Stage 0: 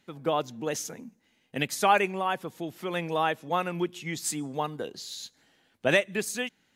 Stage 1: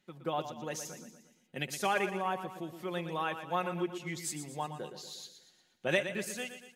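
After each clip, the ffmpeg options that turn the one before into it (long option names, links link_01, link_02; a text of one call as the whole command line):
ffmpeg -i in.wav -af "aecho=1:1:5.5:0.48,aecho=1:1:118|236|354|472|590:0.316|0.158|0.0791|0.0395|0.0198,volume=-8dB" out.wav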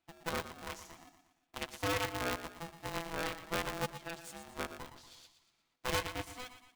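ffmpeg -i in.wav -af "bass=frequency=250:gain=-1,treble=frequency=4000:gain=-7,aeval=exprs='0.188*(cos(1*acos(clip(val(0)/0.188,-1,1)))-cos(1*PI/2))+0.0422*(cos(8*acos(clip(val(0)/0.188,-1,1)))-cos(8*PI/2))':channel_layout=same,aeval=exprs='val(0)*sgn(sin(2*PI*500*n/s))':channel_layout=same,volume=-7dB" out.wav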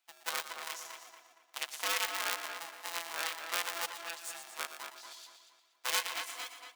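ffmpeg -i in.wav -filter_complex "[0:a]highpass=790,highshelf=frequency=2900:gain=8.5,asplit=2[link_01][link_02];[link_02]adelay=233,lowpass=frequency=3200:poles=1,volume=-6dB,asplit=2[link_03][link_04];[link_04]adelay=233,lowpass=frequency=3200:poles=1,volume=0.4,asplit=2[link_05][link_06];[link_06]adelay=233,lowpass=frequency=3200:poles=1,volume=0.4,asplit=2[link_07][link_08];[link_08]adelay=233,lowpass=frequency=3200:poles=1,volume=0.4,asplit=2[link_09][link_10];[link_10]adelay=233,lowpass=frequency=3200:poles=1,volume=0.4[link_11];[link_03][link_05][link_07][link_09][link_11]amix=inputs=5:normalize=0[link_12];[link_01][link_12]amix=inputs=2:normalize=0" out.wav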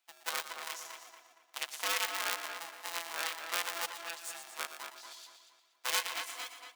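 ffmpeg -i in.wav -af "highpass=110" out.wav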